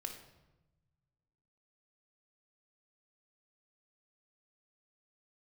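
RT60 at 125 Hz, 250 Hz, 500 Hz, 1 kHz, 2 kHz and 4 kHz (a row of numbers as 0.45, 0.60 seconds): 2.1, 1.6, 1.1, 1.0, 0.85, 0.75 seconds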